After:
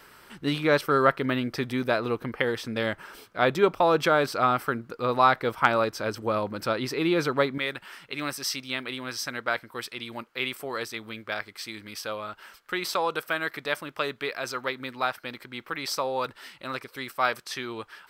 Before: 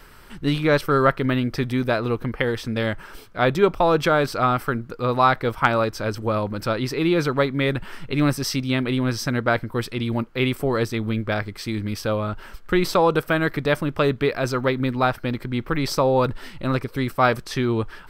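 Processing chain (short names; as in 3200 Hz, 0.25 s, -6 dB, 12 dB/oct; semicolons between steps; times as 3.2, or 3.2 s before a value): HPF 280 Hz 6 dB/oct, from 7.58 s 1300 Hz; gain -2 dB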